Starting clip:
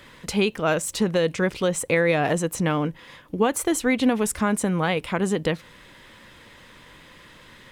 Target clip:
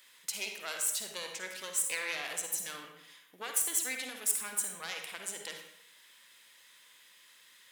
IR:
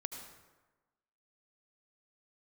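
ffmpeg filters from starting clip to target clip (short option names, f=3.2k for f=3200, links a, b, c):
-filter_complex "[0:a]aeval=exprs='0.398*(cos(1*acos(clip(val(0)/0.398,-1,1)))-cos(1*PI/2))+0.2*(cos(2*acos(clip(val(0)/0.398,-1,1)))-cos(2*PI/2))+0.0158*(cos(6*acos(clip(val(0)/0.398,-1,1)))-cos(6*PI/2))':c=same,aderivative[a];[1:a]atrim=start_sample=2205,asetrate=70560,aresample=44100[b];[a][b]afir=irnorm=-1:irlink=0,volume=4dB"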